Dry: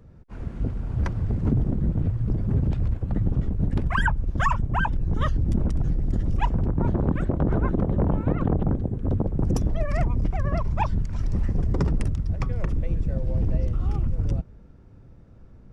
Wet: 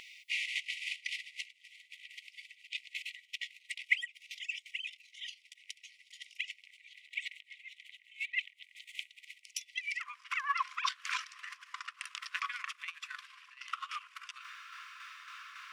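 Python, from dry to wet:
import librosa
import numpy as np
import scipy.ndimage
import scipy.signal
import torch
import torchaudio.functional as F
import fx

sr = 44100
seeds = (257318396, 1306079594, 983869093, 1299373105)

y = fx.peak_eq(x, sr, hz=2800.0, db=10.5, octaves=1.2)
y = fx.over_compress(y, sr, threshold_db=-29.0, ratio=-0.5)
y = fx.tremolo_shape(y, sr, shape='saw_down', hz=3.6, depth_pct=45)
y = fx.brickwall_highpass(y, sr, low_hz=fx.steps((0.0, 1900.0), (9.99, 1000.0)))
y = F.gain(torch.from_numpy(y), 13.5).numpy()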